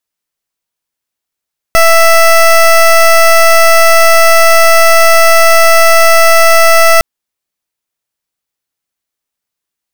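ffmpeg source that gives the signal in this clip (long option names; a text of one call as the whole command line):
ffmpeg -f lavfi -i "aevalsrc='0.596*(2*lt(mod(662*t,1),0.18)-1)':duration=5.26:sample_rate=44100" out.wav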